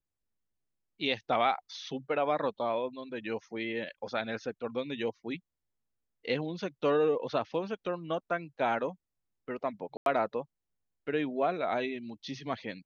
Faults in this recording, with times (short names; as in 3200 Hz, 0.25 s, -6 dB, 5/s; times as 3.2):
9.97–10.06 gap 92 ms